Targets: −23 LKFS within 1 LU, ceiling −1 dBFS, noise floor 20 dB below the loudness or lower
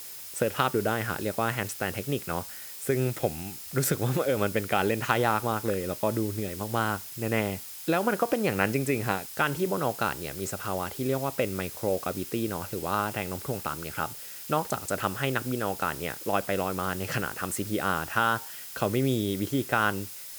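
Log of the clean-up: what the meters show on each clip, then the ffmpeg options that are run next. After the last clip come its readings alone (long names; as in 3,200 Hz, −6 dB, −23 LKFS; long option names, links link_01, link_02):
interfering tone 5,100 Hz; level of the tone −56 dBFS; background noise floor −42 dBFS; target noise floor −49 dBFS; integrated loudness −29.0 LKFS; sample peak −7.0 dBFS; target loudness −23.0 LKFS
→ -af "bandreject=frequency=5100:width=30"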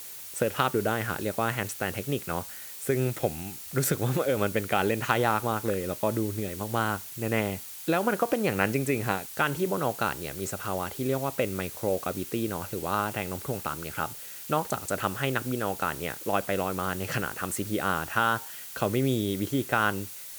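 interfering tone none found; background noise floor −42 dBFS; target noise floor −49 dBFS
→ -af "afftdn=noise_reduction=7:noise_floor=-42"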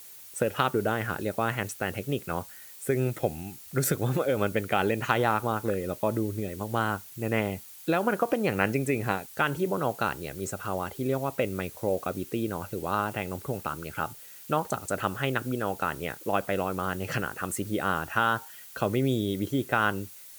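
background noise floor −47 dBFS; target noise floor −50 dBFS
→ -af "afftdn=noise_reduction=6:noise_floor=-47"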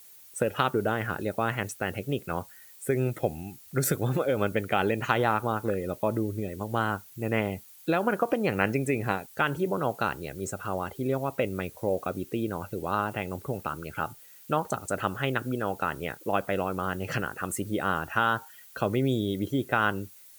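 background noise floor −52 dBFS; integrated loudness −29.5 LKFS; sample peak −6.5 dBFS; target loudness −23.0 LKFS
→ -af "volume=6.5dB,alimiter=limit=-1dB:level=0:latency=1"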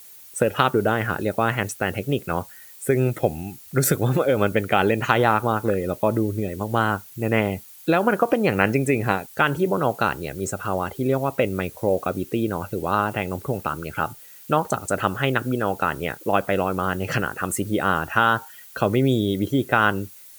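integrated loudness −23.0 LKFS; sample peak −1.0 dBFS; background noise floor −45 dBFS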